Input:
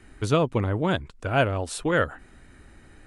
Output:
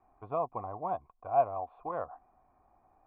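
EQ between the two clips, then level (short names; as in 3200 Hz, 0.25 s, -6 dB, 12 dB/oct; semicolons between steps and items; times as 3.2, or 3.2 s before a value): vocal tract filter a; +5.0 dB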